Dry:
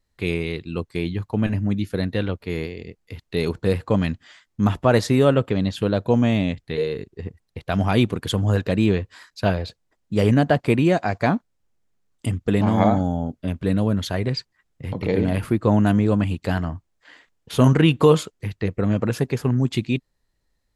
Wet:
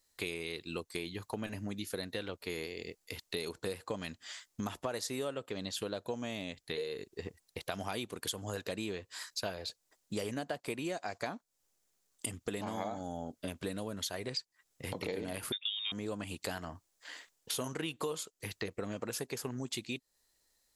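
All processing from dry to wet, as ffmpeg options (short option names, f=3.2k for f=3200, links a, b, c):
-filter_complex "[0:a]asettb=1/sr,asplit=3[a][b][c];[a]atrim=end=15.524[d];[b]atrim=start=15.52:end=15.92,asetpts=PTS-STARTPTS,afade=t=in:d=0.004:c=qsin,afade=t=out:st=0.396:d=0.004:c=qsin,highpass=420,lowpass=f=3.3k:t=q:w=0.5098,lowpass=f=3.3k:t=q:w=0.6013,lowpass=f=3.3k:t=q:w=0.9,lowpass=f=3.3k:t=q:w=2.563,afreqshift=-3900[e];[c]atrim=start=15.916[f];[d][e]acrossfade=d=0.004:c1=hsin:c2=qsin[g];[g][f]acrossfade=d=0.004:c1=qsin:c2=hsin,bass=f=250:g=-13,treble=f=4k:g=13,acompressor=threshold=-34dB:ratio=6,volume=-1.5dB"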